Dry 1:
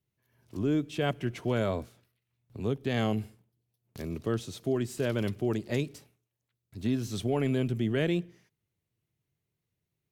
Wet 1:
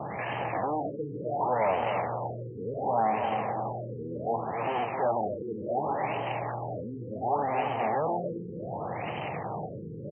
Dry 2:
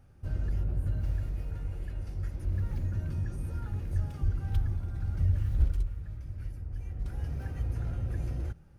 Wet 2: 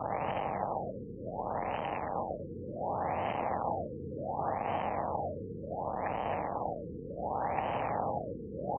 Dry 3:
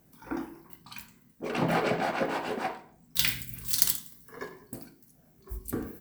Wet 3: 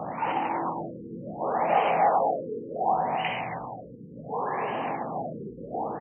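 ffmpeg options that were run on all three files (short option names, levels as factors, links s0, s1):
-filter_complex "[0:a]aeval=exprs='val(0)+0.5*0.168*sgn(val(0))':c=same,anlmdn=15.8,acrossover=split=480|1100[s0][s1][s2];[s0]asoftclip=type=hard:threshold=0.0447[s3];[s1]acontrast=20[s4];[s2]acrusher=bits=4:mode=log:mix=0:aa=0.000001[s5];[s3][s4][s5]amix=inputs=3:normalize=0,highpass=190,equalizer=f=260:t=q:w=4:g=-5,equalizer=f=380:t=q:w=4:g=-9,equalizer=f=800:t=q:w=4:g=7,equalizer=f=1500:t=q:w=4:g=-10,equalizer=f=3700:t=q:w=4:g=-7,equalizer=f=6300:t=q:w=4:g=9,lowpass=f=8000:w=0.5412,lowpass=f=8000:w=1.3066,asplit=2[s6][s7];[s7]adelay=266,lowpass=f=4900:p=1,volume=0.531,asplit=2[s8][s9];[s9]adelay=266,lowpass=f=4900:p=1,volume=0.51,asplit=2[s10][s11];[s11]adelay=266,lowpass=f=4900:p=1,volume=0.51,asplit=2[s12][s13];[s13]adelay=266,lowpass=f=4900:p=1,volume=0.51,asplit=2[s14][s15];[s15]adelay=266,lowpass=f=4900:p=1,volume=0.51,asplit=2[s16][s17];[s17]adelay=266,lowpass=f=4900:p=1,volume=0.51[s18];[s8][s10][s12][s14][s16][s18]amix=inputs=6:normalize=0[s19];[s6][s19]amix=inputs=2:normalize=0,afftfilt=real='re*lt(b*sr/1024,490*pow(3200/490,0.5+0.5*sin(2*PI*0.68*pts/sr)))':imag='im*lt(b*sr/1024,490*pow(3200/490,0.5+0.5*sin(2*PI*0.68*pts/sr)))':win_size=1024:overlap=0.75,volume=0.447"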